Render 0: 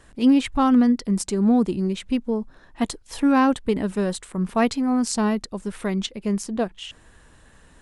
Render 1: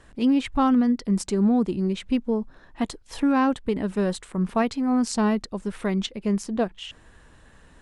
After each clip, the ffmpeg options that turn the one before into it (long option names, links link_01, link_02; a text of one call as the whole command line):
ffmpeg -i in.wav -af "highshelf=frequency=7600:gain=-9,alimiter=limit=-13.5dB:level=0:latency=1:release=361" out.wav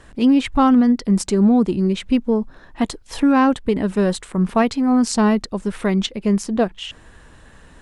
ffmpeg -i in.wav -af "acontrast=62" out.wav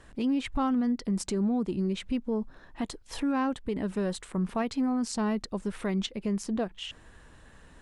ffmpeg -i in.wav -af "alimiter=limit=-14dB:level=0:latency=1:release=148,volume=-7.5dB" out.wav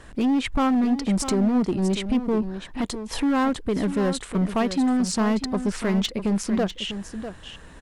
ffmpeg -i in.wav -af "asoftclip=type=hard:threshold=-26dB,aecho=1:1:648:0.299,volume=8dB" out.wav